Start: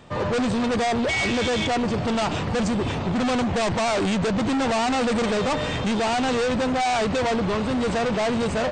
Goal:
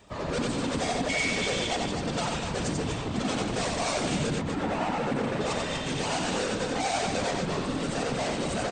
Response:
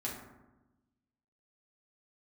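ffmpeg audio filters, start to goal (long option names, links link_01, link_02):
-filter_complex "[0:a]asettb=1/sr,asplit=3[link_01][link_02][link_03];[link_01]atrim=end=4.344[link_04];[link_02]atrim=start=4.34:end=5.41,asetpts=PTS-STARTPTS,afade=type=in:duration=0.004:curve=qsin,afade=type=out:start_time=1.066:duration=0.004:curve=qsin,acrossover=split=2700[link_05][link_06];[link_06]acompressor=threshold=-48dB:ratio=4:attack=1:release=60[link_07];[link_05][link_07]amix=inputs=2:normalize=0[link_08];[link_03]atrim=start=5.406[link_09];[link_04][link_08]acrossfade=duration=0.004:curve1=hsin:curve2=qsin[link_10];[link_10][link_09]acrossfade=duration=0.004:curve1=qsin:curve2=hsin,crystalizer=i=2:c=0,afftfilt=real='hypot(re,im)*cos(2*PI*random(0))':imag='hypot(re,im)*sin(2*PI*random(1))':win_size=512:overlap=0.75,asplit=2[link_11][link_12];[link_12]aecho=0:1:90.38|244.9:0.708|0.447[link_13];[link_11][link_13]amix=inputs=2:normalize=0,volume=-3dB"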